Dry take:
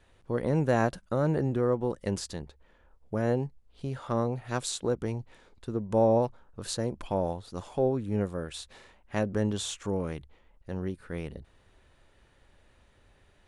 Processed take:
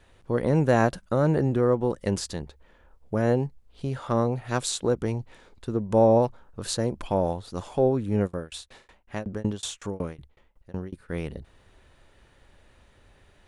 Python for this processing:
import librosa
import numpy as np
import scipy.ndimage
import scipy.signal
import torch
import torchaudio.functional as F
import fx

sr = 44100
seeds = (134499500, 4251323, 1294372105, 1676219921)

y = fx.tremolo_shape(x, sr, shape='saw_down', hz=5.4, depth_pct=100, at=(8.26, 11.08), fade=0.02)
y = y * 10.0 ** (4.5 / 20.0)